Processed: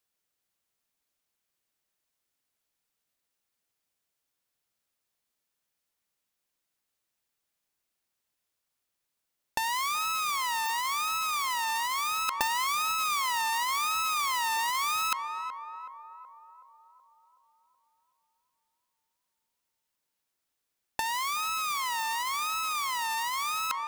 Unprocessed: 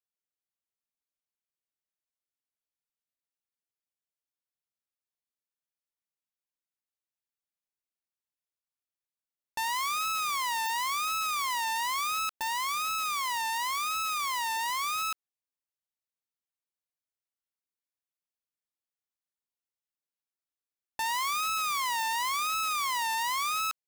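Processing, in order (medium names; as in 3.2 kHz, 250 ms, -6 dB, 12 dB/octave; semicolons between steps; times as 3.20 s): band-passed feedback delay 374 ms, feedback 62%, band-pass 680 Hz, level -13 dB; compressor with a negative ratio -34 dBFS, ratio -0.5; trim +6 dB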